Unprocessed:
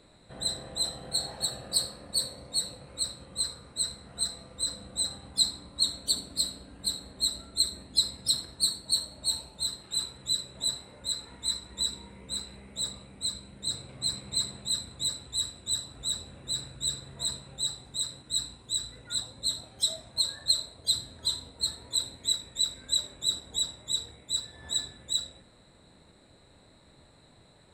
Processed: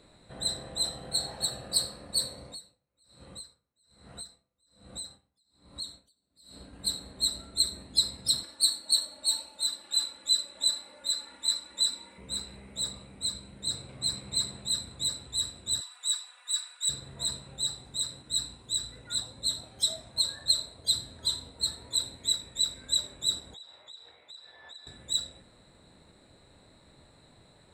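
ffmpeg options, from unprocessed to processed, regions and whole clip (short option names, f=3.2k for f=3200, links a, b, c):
-filter_complex "[0:a]asettb=1/sr,asplit=3[a][b][c];[a]atrim=end=2.474[d];[b]atrim=start=2.47:end=6.73,asetpts=PTS-STARTPTS,afade=t=in:d=0.004:c=qsin,afade=t=out:st=4.256:d=0.004:c=qsin,acompressor=threshold=-37dB:ratio=3:attack=3.2:release=140:knee=1:detection=peak,aeval=exprs='val(0)*pow(10,-37*(0.5-0.5*cos(2*PI*1.2*n/s))/20)':c=same[e];[c]atrim=start=6.726[f];[d][e]acrossfade=d=0.004:c1=hsin:c2=qsin[g];[g][f]acrossfade=d=0.004:c1=qsin:c2=hsin,asettb=1/sr,asplit=3[h][i][j];[h]atrim=end=8.434[k];[i]atrim=start=8.43:end=12.18,asetpts=PTS-STARTPTS,afade=t=in:d=0.004:c=qsin,afade=t=out:st=3.746:d=0.004:c=qsin,highpass=f=710:p=1,aecho=1:1:3.5:0.8,atrim=end_sample=165375[l];[j]atrim=start=12.176[m];[k][l]acrossfade=d=0.004:c1=hsin:c2=qsin[n];[n][m]acrossfade=d=0.004:c1=qsin:c2=hsin,asettb=1/sr,asplit=3[o][p][q];[o]atrim=end=15.814[r];[p]atrim=start=15.81:end=16.89,asetpts=PTS-STARTPTS,afade=t=in:d=0.004:c=qsin,afade=t=out:st=1.076:d=0.004:c=qsin,highpass=f=1k:w=0.5412,highpass=f=1k:w=1.3066,aecho=1:1:4.1:0.91,atrim=end_sample=47628[s];[q]atrim=start=16.886[t];[r][s]acrossfade=d=0.004:c1=hsin:c2=qsin[u];[u][t]acrossfade=d=0.004:c1=qsin:c2=hsin,asettb=1/sr,asplit=3[v][w][x];[v]atrim=end=23.544[y];[w]atrim=start=23.54:end=24.87,asetpts=PTS-STARTPTS,afade=t=in:d=0.004:c=qsin,afade=t=out:st=1.326:d=0.004:c=qsin,acrossover=split=470 4600:gain=0.0891 1 0.0708[z][aa][ab];[z][aa][ab]amix=inputs=3:normalize=0,acompressor=threshold=-46dB:ratio=5:attack=3.2:release=140:knee=1:detection=peak,highpass=44[ac];[x]atrim=start=24.866[ad];[y][ac]acrossfade=d=0.004:c1=hsin:c2=qsin[ae];[ae][ad]acrossfade=d=0.004:c1=qsin:c2=hsin"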